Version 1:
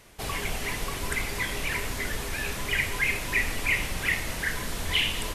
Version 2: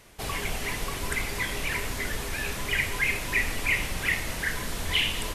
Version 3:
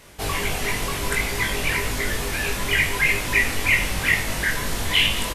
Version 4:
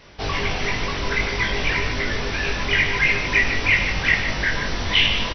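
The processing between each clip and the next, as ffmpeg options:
ffmpeg -i in.wav -af anull out.wav
ffmpeg -i in.wav -filter_complex "[0:a]asplit=2[link_01][link_02];[link_02]adelay=20,volume=-2.5dB[link_03];[link_01][link_03]amix=inputs=2:normalize=0,volume=4.5dB" out.wav
ffmpeg -i in.wav -af "aecho=1:1:151:0.355,volume=1dB" -ar 48000 -c:a mp2 -b:a 48k out.mp2

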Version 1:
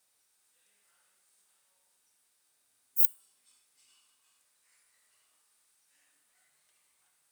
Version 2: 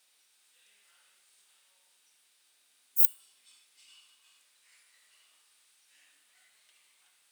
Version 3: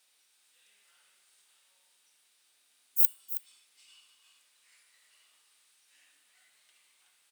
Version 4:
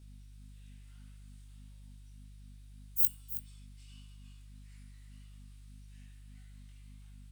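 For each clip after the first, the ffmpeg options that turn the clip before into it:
ffmpeg -i in.wav -af "highpass=200,equalizer=frequency=3100:width_type=o:width=1.6:gain=10,volume=1.5dB" out.wav
ffmpeg -i in.wav -af "aecho=1:1:320:0.224,volume=-1dB" out.wav
ffmpeg -i in.wav -af "aeval=exprs='val(0)+0.00316*(sin(2*PI*50*n/s)+sin(2*PI*2*50*n/s)/2+sin(2*PI*3*50*n/s)/3+sin(2*PI*4*50*n/s)/4+sin(2*PI*5*50*n/s)/5)':channel_layout=same,flanger=delay=18:depth=4.5:speed=1.7" out.wav

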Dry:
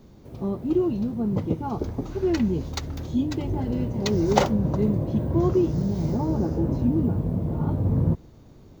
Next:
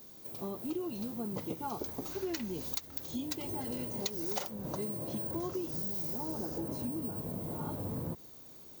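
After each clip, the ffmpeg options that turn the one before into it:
ffmpeg -i in.wav -af "aemphasis=mode=production:type=riaa,acompressor=threshold=-30dB:ratio=6,volume=-3.5dB" out.wav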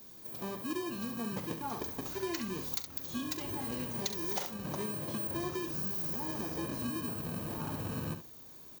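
ffmpeg -i in.wav -filter_complex "[0:a]acrossover=split=470|2000[link_01][link_02][link_03];[link_01]acrusher=samples=32:mix=1:aa=0.000001[link_04];[link_04][link_02][link_03]amix=inputs=3:normalize=0,aecho=1:1:42|68:0.188|0.335" out.wav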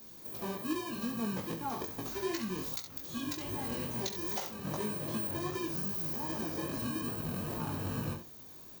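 ffmpeg -i in.wav -filter_complex "[0:a]asplit=2[link_01][link_02];[link_02]alimiter=level_in=3dB:limit=-24dB:level=0:latency=1:release=338,volume=-3dB,volume=2dB[link_03];[link_01][link_03]amix=inputs=2:normalize=0,flanger=delay=17.5:depth=5:speed=2.5,volume=-2.5dB" out.wav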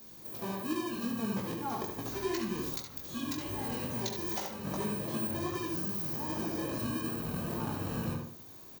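ffmpeg -i in.wav -filter_complex "[0:a]asplit=2[link_01][link_02];[link_02]adelay=77,lowpass=frequency=1900:poles=1,volume=-3.5dB,asplit=2[link_03][link_04];[link_04]adelay=77,lowpass=frequency=1900:poles=1,volume=0.38,asplit=2[link_05][link_06];[link_06]adelay=77,lowpass=frequency=1900:poles=1,volume=0.38,asplit=2[link_07][link_08];[link_08]adelay=77,lowpass=frequency=1900:poles=1,volume=0.38,asplit=2[link_09][link_10];[link_10]adelay=77,lowpass=frequency=1900:poles=1,volume=0.38[link_11];[link_01][link_03][link_05][link_07][link_09][link_11]amix=inputs=6:normalize=0" out.wav

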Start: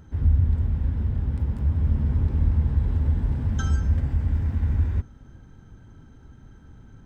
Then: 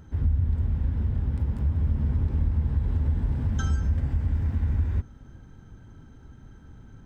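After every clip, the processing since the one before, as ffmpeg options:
ffmpeg -i in.wav -af "acompressor=threshold=-21dB:ratio=2.5" out.wav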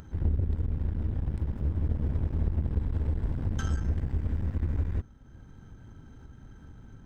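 ffmpeg -i in.wav -af "aeval=exprs='0.211*(cos(1*acos(clip(val(0)/0.211,-1,1)))-cos(1*PI/2))+0.0266*(cos(3*acos(clip(val(0)/0.211,-1,1)))-cos(3*PI/2))+0.015*(cos(8*acos(clip(val(0)/0.211,-1,1)))-cos(8*PI/2))':channel_layout=same,acompressor=mode=upward:threshold=-38dB:ratio=2.5,volume=-2dB" out.wav

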